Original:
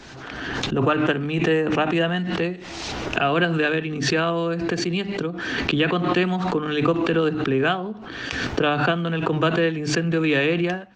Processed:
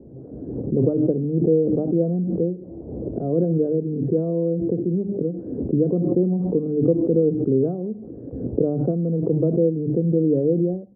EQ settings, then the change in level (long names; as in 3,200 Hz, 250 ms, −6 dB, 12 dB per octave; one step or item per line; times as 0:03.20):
high-pass filter 56 Hz
Chebyshev low-pass filter 520 Hz, order 4
+3.0 dB